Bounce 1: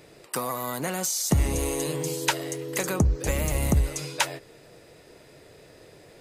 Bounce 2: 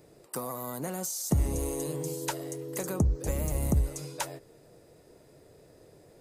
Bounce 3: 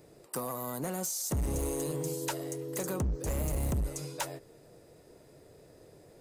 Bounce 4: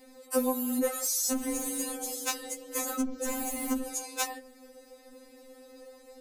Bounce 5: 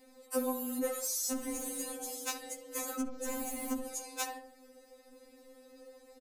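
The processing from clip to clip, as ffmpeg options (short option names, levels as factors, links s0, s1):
-af "equalizer=f=2600:w=0.57:g=-11,volume=0.668"
-af "asoftclip=type=hard:threshold=0.0422"
-af "afftfilt=real='re*3.46*eq(mod(b,12),0)':imag='im*3.46*eq(mod(b,12),0)':win_size=2048:overlap=0.75,volume=2.66"
-filter_complex "[0:a]asplit=2[s0][s1];[s1]adelay=67,lowpass=f=1800:p=1,volume=0.355,asplit=2[s2][s3];[s3]adelay=67,lowpass=f=1800:p=1,volume=0.43,asplit=2[s4][s5];[s5]adelay=67,lowpass=f=1800:p=1,volume=0.43,asplit=2[s6][s7];[s7]adelay=67,lowpass=f=1800:p=1,volume=0.43,asplit=2[s8][s9];[s9]adelay=67,lowpass=f=1800:p=1,volume=0.43[s10];[s0][s2][s4][s6][s8][s10]amix=inputs=6:normalize=0,volume=0.531"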